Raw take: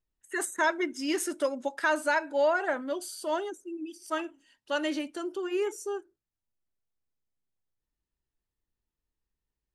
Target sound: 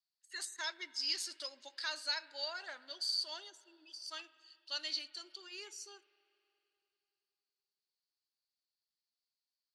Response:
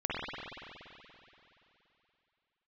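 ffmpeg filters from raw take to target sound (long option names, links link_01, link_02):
-filter_complex "[0:a]bandpass=frequency=4500:width_type=q:width=9.2:csg=0,asplit=2[link_01][link_02];[1:a]atrim=start_sample=2205,adelay=21[link_03];[link_02][link_03]afir=irnorm=-1:irlink=0,volume=-26dB[link_04];[link_01][link_04]amix=inputs=2:normalize=0,volume=13.5dB"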